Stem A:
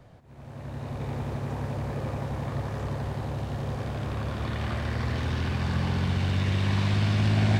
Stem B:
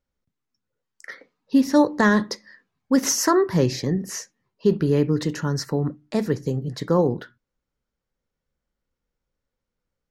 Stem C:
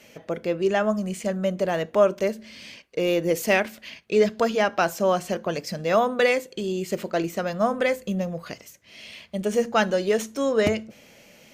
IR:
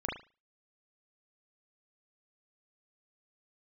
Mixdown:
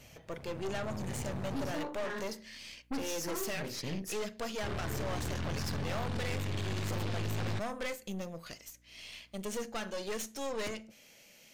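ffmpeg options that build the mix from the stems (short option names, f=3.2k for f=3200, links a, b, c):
-filter_complex "[0:a]volume=-3dB,asplit=3[a][b][c];[a]atrim=end=1.72,asetpts=PTS-STARTPTS,afade=t=out:st=1.716:d=0.004:c=hsin[d];[b]atrim=start=1.72:end=4.63,asetpts=PTS-STARTPTS,volume=0[e];[c]atrim=start=4.63,asetpts=PTS-STARTPTS,afade=t=in:d=0.004:c=hsin[f];[d][e][f]concat=n=3:v=0:a=1[g];[1:a]aeval=exprs='val(0)+0.002*(sin(2*PI*60*n/s)+sin(2*PI*2*60*n/s)/2+sin(2*PI*3*60*n/s)/3+sin(2*PI*4*60*n/s)/4+sin(2*PI*5*60*n/s)/5)':c=same,volume=-10dB,asplit=2[h][i];[i]volume=-13.5dB[j];[2:a]volume=-10.5dB,asplit=3[k][l][m];[l]volume=-18.5dB[n];[m]apad=whole_len=445509[o];[h][o]sidechaincompress=threshold=-45dB:ratio=8:attack=6.9:release=162[p];[p][k]amix=inputs=2:normalize=0,highshelf=f=2k:g=11.5,alimiter=limit=-20dB:level=0:latency=1:release=357,volume=0dB[q];[3:a]atrim=start_sample=2205[r];[j][n]amix=inputs=2:normalize=0[s];[s][r]afir=irnorm=-1:irlink=0[t];[g][q][t]amix=inputs=3:normalize=0,aeval=exprs='(tanh(44.7*val(0)+0.65)-tanh(0.65))/44.7':c=same"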